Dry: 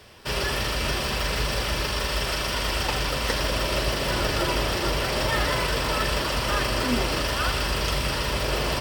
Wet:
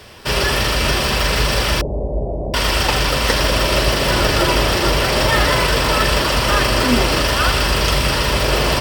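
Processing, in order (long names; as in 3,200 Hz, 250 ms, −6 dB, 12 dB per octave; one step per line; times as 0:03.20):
0:01.81–0:02.54: elliptic low-pass filter 720 Hz, stop band 50 dB
level +9 dB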